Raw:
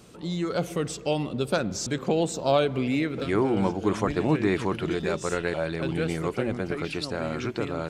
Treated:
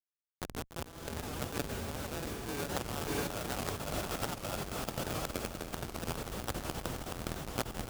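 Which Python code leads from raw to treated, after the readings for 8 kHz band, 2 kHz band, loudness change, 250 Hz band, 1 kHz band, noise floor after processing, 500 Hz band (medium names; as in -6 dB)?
-3.5 dB, -9.0 dB, -11.0 dB, -14.5 dB, -8.5 dB, -84 dBFS, -14.5 dB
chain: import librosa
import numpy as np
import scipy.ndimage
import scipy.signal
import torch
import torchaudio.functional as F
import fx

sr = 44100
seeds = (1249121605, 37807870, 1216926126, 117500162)

p1 = fx.peak_eq(x, sr, hz=3000.0, db=-2.5, octaves=0.22)
p2 = p1 * np.sin(2.0 * np.pi * 1000.0 * np.arange(len(p1)) / sr)
p3 = fx.schmitt(p2, sr, flips_db=-22.0)
p4 = fx.echo_diffused(p3, sr, ms=648, feedback_pct=41, wet_db=-5.5)
p5 = fx.over_compress(p4, sr, threshold_db=-33.0, ratio=-0.5)
p6 = fx.highpass(p5, sr, hz=120.0, slope=6)
p7 = fx.high_shelf(p6, sr, hz=4800.0, db=7.0)
p8 = p7 + fx.echo_single(p7, sr, ms=290, db=-13.0, dry=0)
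y = fx.record_warp(p8, sr, rpm=78.0, depth_cents=160.0)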